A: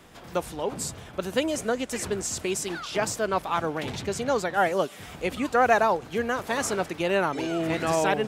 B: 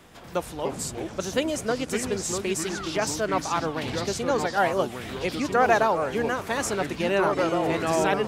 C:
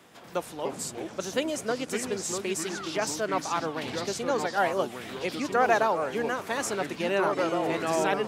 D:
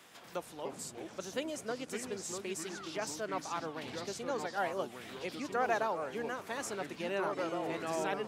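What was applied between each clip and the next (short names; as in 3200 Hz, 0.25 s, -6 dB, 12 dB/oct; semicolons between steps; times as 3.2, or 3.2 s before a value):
echoes that change speed 0.205 s, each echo -4 st, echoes 3, each echo -6 dB
Bessel high-pass 180 Hz, order 2; gain -2.5 dB
mismatched tape noise reduction encoder only; gain -9 dB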